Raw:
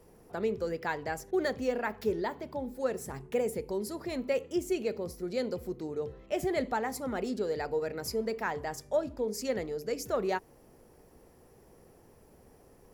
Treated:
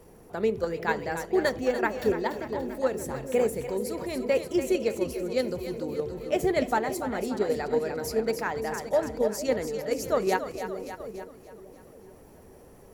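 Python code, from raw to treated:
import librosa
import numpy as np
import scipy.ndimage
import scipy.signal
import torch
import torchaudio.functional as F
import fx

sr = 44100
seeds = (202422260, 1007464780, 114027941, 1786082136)

p1 = fx.echo_split(x, sr, split_hz=520.0, low_ms=450, high_ms=289, feedback_pct=52, wet_db=-7.0)
p2 = fx.level_steps(p1, sr, step_db=15)
p3 = p1 + (p2 * 10.0 ** (1.5 / 20.0))
y = fx.notch(p3, sr, hz=5100.0, q=16.0)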